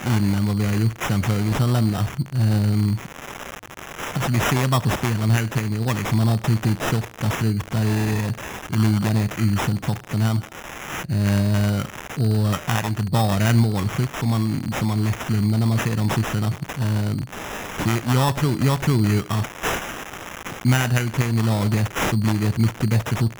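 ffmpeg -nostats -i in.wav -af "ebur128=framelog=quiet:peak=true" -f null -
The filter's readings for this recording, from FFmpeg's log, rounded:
Integrated loudness:
  I:         -21.9 LUFS
  Threshold: -32.1 LUFS
Loudness range:
  LRA:         1.8 LU
  Threshold: -42.2 LUFS
  LRA low:   -23.0 LUFS
  LRA high:  -21.3 LUFS
True peak:
  Peak:       -6.9 dBFS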